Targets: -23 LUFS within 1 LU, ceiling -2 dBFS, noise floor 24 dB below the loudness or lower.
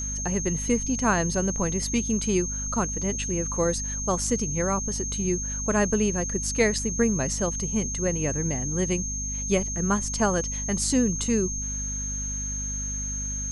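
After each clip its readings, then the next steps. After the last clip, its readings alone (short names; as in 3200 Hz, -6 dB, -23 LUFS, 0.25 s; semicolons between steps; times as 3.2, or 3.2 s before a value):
hum 50 Hz; harmonics up to 250 Hz; hum level -31 dBFS; steady tone 6400 Hz; tone level -30 dBFS; loudness -25.5 LUFS; peak -9.0 dBFS; loudness target -23.0 LUFS
-> de-hum 50 Hz, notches 5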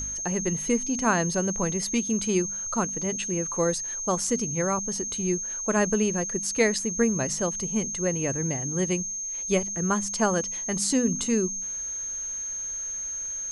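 hum none; steady tone 6400 Hz; tone level -30 dBFS
-> notch 6400 Hz, Q 30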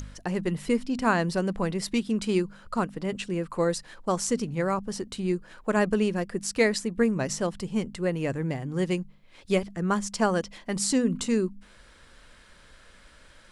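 steady tone none; loudness -28.0 LUFS; peak -10.0 dBFS; loudness target -23.0 LUFS
-> gain +5 dB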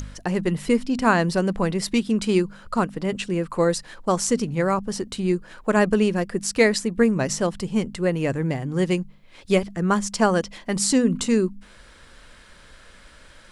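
loudness -23.0 LUFS; peak -5.0 dBFS; noise floor -49 dBFS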